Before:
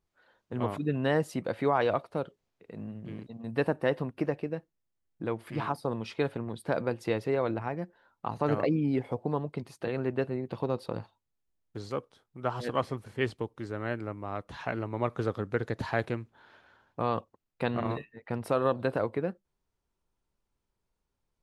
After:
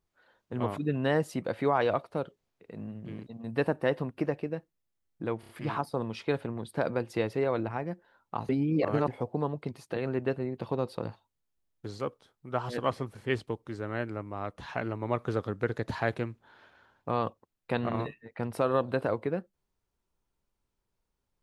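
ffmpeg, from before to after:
ffmpeg -i in.wav -filter_complex "[0:a]asplit=6[link_01][link_02][link_03][link_04][link_05][link_06];[link_01]atrim=end=5.432[link_07];[link_02]atrim=start=5.398:end=5.432[link_08];[link_03]atrim=start=5.398:end=5.432[link_09];[link_04]atrim=start=5.398:end=8.402[link_10];[link_05]atrim=start=8.398:end=8.992,asetpts=PTS-STARTPTS,areverse[link_11];[link_06]atrim=start=8.988[link_12];[link_07][link_08]acrossfade=duration=0.004:curve1=hsin:curve2=hsin[link_13];[link_13][link_09]acrossfade=duration=0.004:curve1=hsin:curve2=hsin[link_14];[link_14][link_10]acrossfade=duration=0.004:curve1=hsin:curve2=hsin[link_15];[link_15][link_11]acrossfade=duration=0.004:curve1=hsin:curve2=hsin[link_16];[link_16][link_12]acrossfade=duration=0.004:curve1=hsin:curve2=hsin" out.wav

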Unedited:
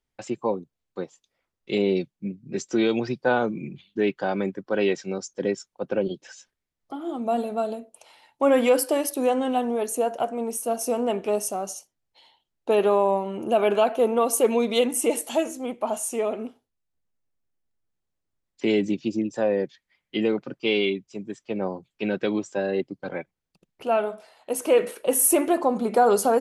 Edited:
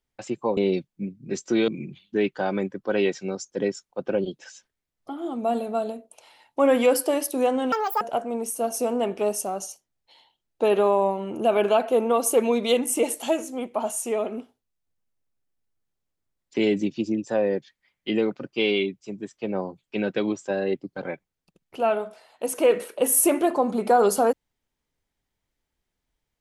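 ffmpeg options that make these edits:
ffmpeg -i in.wav -filter_complex "[0:a]asplit=5[link_01][link_02][link_03][link_04][link_05];[link_01]atrim=end=0.572[link_06];[link_02]atrim=start=1.798:end=2.912[link_07];[link_03]atrim=start=3.508:end=9.554[link_08];[link_04]atrim=start=9.55:end=10.08,asetpts=PTS-STARTPTS,asetrate=80262,aresample=44100,atrim=end_sample=12842,asetpts=PTS-STARTPTS[link_09];[link_05]atrim=start=10.076[link_10];[link_06][link_07]acrossfade=duration=0.004:curve1=hsin:curve2=hsin[link_11];[link_11][link_08]acrossfade=duration=0.004:curve1=hsin:curve2=hsin[link_12];[link_12][link_09]acrossfade=duration=0.004:curve1=hsin:curve2=hsin[link_13];[link_13][link_10]acrossfade=duration=0.004:curve1=hsin:curve2=hsin" out.wav

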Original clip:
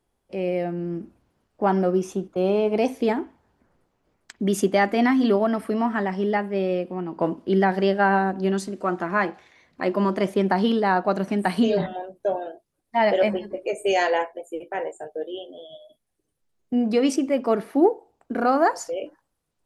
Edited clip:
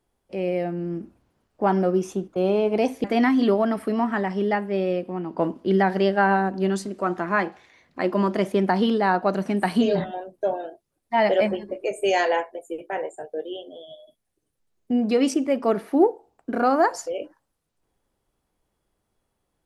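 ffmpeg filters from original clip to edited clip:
ffmpeg -i in.wav -filter_complex "[0:a]asplit=2[link_01][link_02];[link_01]atrim=end=3.042[link_03];[link_02]atrim=start=4.858[link_04];[link_03][link_04]acrossfade=duration=0.004:curve1=hsin:curve2=hsin" out.wav

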